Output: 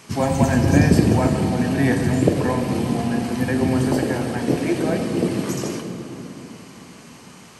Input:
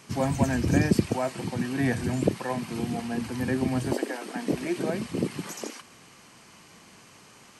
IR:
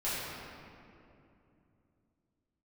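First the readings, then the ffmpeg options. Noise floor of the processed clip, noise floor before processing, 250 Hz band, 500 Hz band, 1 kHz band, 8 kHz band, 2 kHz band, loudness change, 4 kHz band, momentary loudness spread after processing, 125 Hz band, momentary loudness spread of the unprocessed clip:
-44 dBFS, -53 dBFS, +8.5 dB, +8.0 dB, +7.5 dB, +6.5 dB, +6.5 dB, +8.0 dB, +6.5 dB, 15 LU, +9.0 dB, 9 LU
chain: -filter_complex "[0:a]asplit=2[a][b];[b]equalizer=f=2.1k:w=1.2:g=-6[c];[1:a]atrim=start_sample=2205,asetrate=35721,aresample=44100,adelay=12[d];[c][d]afir=irnorm=-1:irlink=0,volume=-10.5dB[e];[a][e]amix=inputs=2:normalize=0,volume=5.5dB"

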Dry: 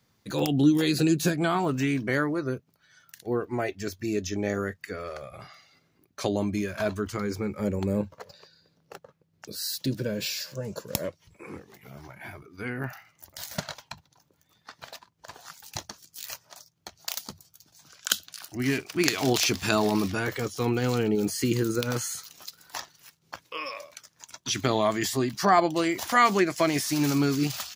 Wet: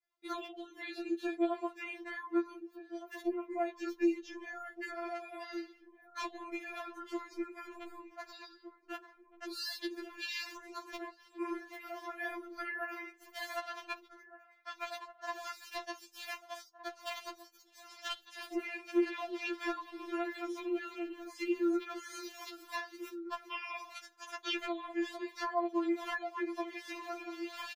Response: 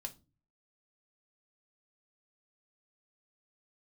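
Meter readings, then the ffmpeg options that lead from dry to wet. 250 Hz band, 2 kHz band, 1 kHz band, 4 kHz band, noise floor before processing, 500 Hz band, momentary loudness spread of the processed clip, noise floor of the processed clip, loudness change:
-10.5 dB, -8.5 dB, -11.0 dB, -11.5 dB, -69 dBFS, -10.5 dB, 14 LU, -64 dBFS, -12.5 dB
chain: -filter_complex "[0:a]acrossover=split=3700[a][b];[b]acompressor=threshold=-47dB:ratio=4:attack=1:release=60[c];[a][c]amix=inputs=2:normalize=0,agate=range=-33dB:threshold=-53dB:ratio=3:detection=peak,bass=f=250:g=-11,treble=f=4k:g=-10,acompressor=threshold=-40dB:ratio=16,asoftclip=type=hard:threshold=-30dB,asplit=2[d][e];[e]adelay=1516,volume=-12dB,highshelf=f=4k:g=-34.1[f];[d][f]amix=inputs=2:normalize=0,asplit=2[g][h];[1:a]atrim=start_sample=2205[i];[h][i]afir=irnorm=-1:irlink=0,volume=-8dB[j];[g][j]amix=inputs=2:normalize=0,afftfilt=real='re*4*eq(mod(b,16),0)':imag='im*4*eq(mod(b,16),0)':win_size=2048:overlap=0.75,volume=6.5dB"

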